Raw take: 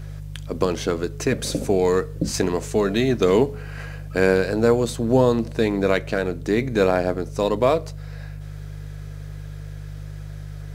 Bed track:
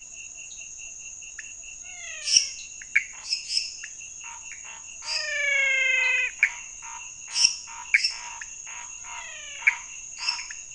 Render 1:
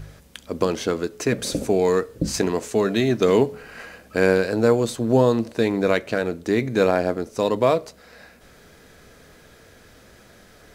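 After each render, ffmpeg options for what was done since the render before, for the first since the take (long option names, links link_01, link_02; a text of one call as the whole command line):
ffmpeg -i in.wav -af "bandreject=frequency=50:width_type=h:width=4,bandreject=frequency=100:width_type=h:width=4,bandreject=frequency=150:width_type=h:width=4" out.wav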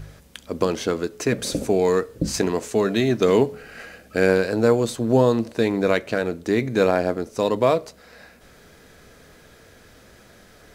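ffmpeg -i in.wav -filter_complex "[0:a]asettb=1/sr,asplit=3[link_01][link_02][link_03];[link_01]atrim=end=3.554[link_04];[link_02]atrim=start=3.55:end=4.29,asetpts=PTS-STARTPTS,afade=type=in:duration=0.004:curve=qsin,afade=type=out:start_time=0.736:duration=0.004:curve=qsin,equalizer=frequency=1000:width=7.8:gain=-14[link_05];[link_03]atrim=start=4.286[link_06];[link_04][link_05]acrossfade=duration=0.004:curve1=hsin:curve2=qsin[link_07];[link_07][link_06]acrossfade=duration=0.004:curve1=qsin:curve2=hsin" out.wav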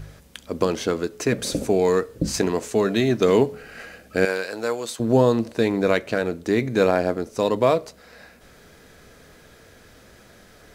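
ffmpeg -i in.wav -filter_complex "[0:a]asettb=1/sr,asplit=3[link_01][link_02][link_03];[link_01]atrim=end=4.254[link_04];[link_02]atrim=start=4.25:end=5,asetpts=PTS-STARTPTS,afade=type=in:duration=0.004:curve=qsin,afade=type=out:start_time=0.746:duration=0.004:curve=qsin,highpass=frequency=1100:poles=1[link_05];[link_03]atrim=start=4.996[link_06];[link_04][link_05]acrossfade=duration=0.004:curve1=hsin:curve2=qsin[link_07];[link_07][link_06]acrossfade=duration=0.004:curve1=qsin:curve2=hsin" out.wav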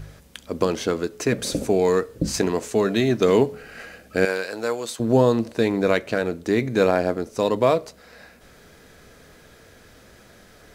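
ffmpeg -i in.wav -af anull out.wav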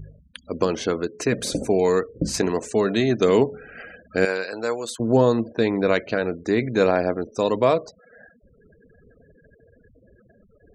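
ffmpeg -i in.wav -af "lowshelf=frequency=110:gain=-2,afftfilt=real='re*gte(hypot(re,im),0.0112)':imag='im*gte(hypot(re,im),0.0112)':win_size=1024:overlap=0.75" out.wav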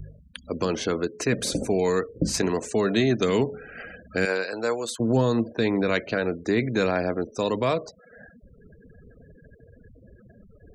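ffmpeg -i in.wav -filter_complex "[0:a]acrossover=split=230|1300[link_01][link_02][link_03];[link_01]acompressor=mode=upward:threshold=-43dB:ratio=2.5[link_04];[link_02]alimiter=limit=-17.5dB:level=0:latency=1:release=72[link_05];[link_04][link_05][link_03]amix=inputs=3:normalize=0" out.wav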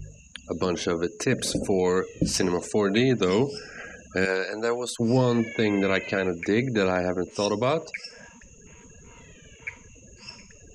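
ffmpeg -i in.wav -i bed.wav -filter_complex "[1:a]volume=-15.5dB[link_01];[0:a][link_01]amix=inputs=2:normalize=0" out.wav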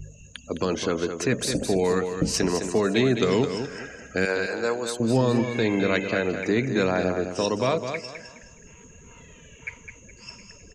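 ffmpeg -i in.wav -af "aecho=1:1:209|418|627|836:0.398|0.119|0.0358|0.0107" out.wav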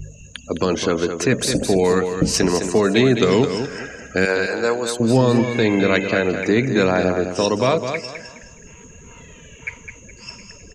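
ffmpeg -i in.wav -af "volume=6dB" out.wav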